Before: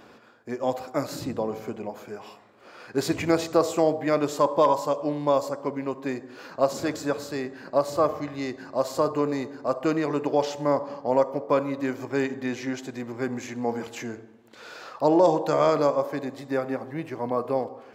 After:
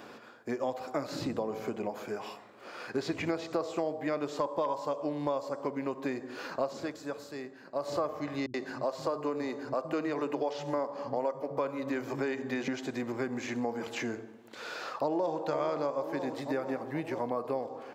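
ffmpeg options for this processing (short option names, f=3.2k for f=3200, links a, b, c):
-filter_complex "[0:a]asettb=1/sr,asplit=3[a][b][c];[a]atrim=end=8.464[d];[b]atrim=start=8.46:end=12.68,asetpts=PTS-STARTPTS,afade=t=in:d=0.004:c=qsin,afade=t=out:st=4.216:d=0.004:c=qsin,acrossover=split=190[e][f];[f]adelay=80[g];[e][g]amix=inputs=2:normalize=0,atrim=end_sample=186102[h];[c]atrim=start=12.676[i];[d][h]acrossfade=d=0.004:c1=hsin:c2=qsin[j];[j][i]acrossfade=d=0.004:c1=qsin:c2=hsin,asplit=2[k][l];[l]afade=t=in:st=14.73:d=0.01,afade=t=out:st=15.44:d=0.01,aecho=0:1:480|960|1440|1920|2400|2880|3360|3840:0.251189|0.163273|0.106127|0.0689827|0.0448387|0.0291452|0.0189444|0.0123138[m];[k][m]amix=inputs=2:normalize=0,asplit=3[n][o][p];[n]atrim=end=6.93,asetpts=PTS-STARTPTS,afade=t=out:st=6.75:d=0.18:silence=0.251189[q];[o]atrim=start=6.93:end=7.75,asetpts=PTS-STARTPTS,volume=-12dB[r];[p]atrim=start=7.75,asetpts=PTS-STARTPTS,afade=t=in:d=0.18:silence=0.251189[s];[q][r][s]concat=n=3:v=0:a=1,acrossover=split=5600[t][u];[u]acompressor=threshold=-57dB:ratio=4:attack=1:release=60[v];[t][v]amix=inputs=2:normalize=0,highpass=f=150:p=1,acompressor=threshold=-33dB:ratio=4,volume=2.5dB"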